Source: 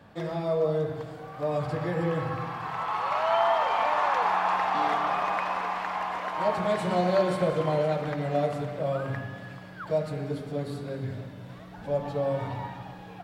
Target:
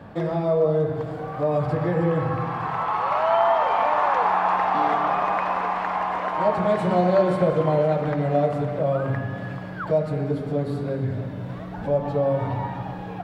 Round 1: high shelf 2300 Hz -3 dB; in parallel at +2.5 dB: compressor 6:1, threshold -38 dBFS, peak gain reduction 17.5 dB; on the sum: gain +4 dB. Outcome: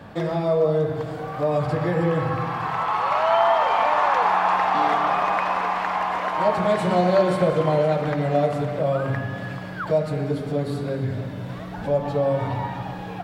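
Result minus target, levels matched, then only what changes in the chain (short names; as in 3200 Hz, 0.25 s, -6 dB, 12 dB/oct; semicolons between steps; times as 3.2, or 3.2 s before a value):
4000 Hz band +5.0 dB
change: high shelf 2300 Hz -12 dB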